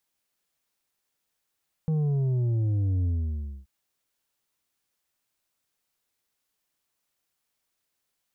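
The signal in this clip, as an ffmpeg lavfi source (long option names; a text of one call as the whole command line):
ffmpeg -f lavfi -i "aevalsrc='0.0708*clip((1.78-t)/0.61,0,1)*tanh(2*sin(2*PI*160*1.78/log(65/160)*(exp(log(65/160)*t/1.78)-1)))/tanh(2)':duration=1.78:sample_rate=44100" out.wav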